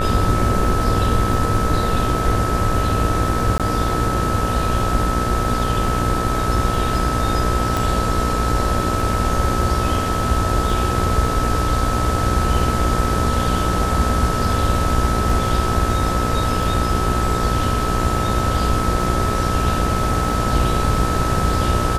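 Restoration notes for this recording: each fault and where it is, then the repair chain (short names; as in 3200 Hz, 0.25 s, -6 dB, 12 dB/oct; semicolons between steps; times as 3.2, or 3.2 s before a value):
buzz 60 Hz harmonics 30 -23 dBFS
crackle 22/s -28 dBFS
tone 1300 Hz -23 dBFS
3.58–3.6 gap 17 ms
7.77 pop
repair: de-click; notch 1300 Hz, Q 30; de-hum 60 Hz, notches 30; interpolate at 3.58, 17 ms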